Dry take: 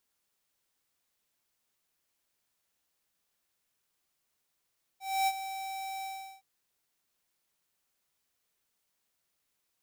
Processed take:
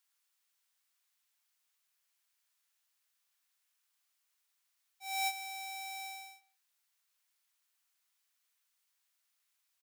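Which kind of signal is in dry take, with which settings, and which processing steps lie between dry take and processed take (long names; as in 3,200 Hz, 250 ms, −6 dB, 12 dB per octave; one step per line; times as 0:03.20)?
note with an ADSR envelope square 773 Hz, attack 271 ms, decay 49 ms, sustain −12 dB, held 1.04 s, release 377 ms −26.5 dBFS
high-pass filter 1,100 Hz 12 dB per octave
far-end echo of a speakerphone 160 ms, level −21 dB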